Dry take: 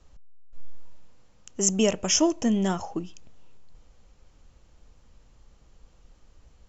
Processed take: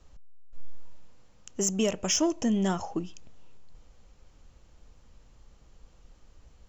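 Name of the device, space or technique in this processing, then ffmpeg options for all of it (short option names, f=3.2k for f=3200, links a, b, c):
soft clipper into limiter: -af "asoftclip=type=tanh:threshold=-11.5dB,alimiter=limit=-17dB:level=0:latency=1:release=322"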